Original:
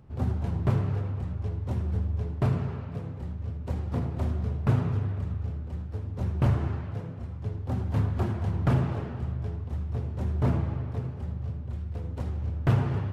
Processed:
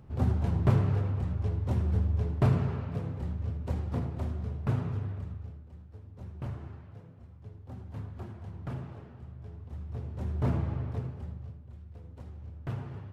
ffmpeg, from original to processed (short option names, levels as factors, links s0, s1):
-af "volume=4.73,afade=t=out:st=3.35:d=0.94:silence=0.473151,afade=t=out:st=5.12:d=0.53:silence=0.375837,afade=t=in:st=9.35:d=1.52:silence=0.237137,afade=t=out:st=10.87:d=0.73:silence=0.266073"